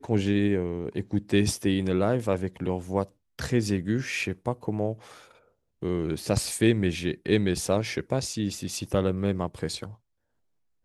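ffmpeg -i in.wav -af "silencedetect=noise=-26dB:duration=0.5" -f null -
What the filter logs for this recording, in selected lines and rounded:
silence_start: 4.93
silence_end: 5.83 | silence_duration: 0.90
silence_start: 9.84
silence_end: 10.85 | silence_duration: 1.01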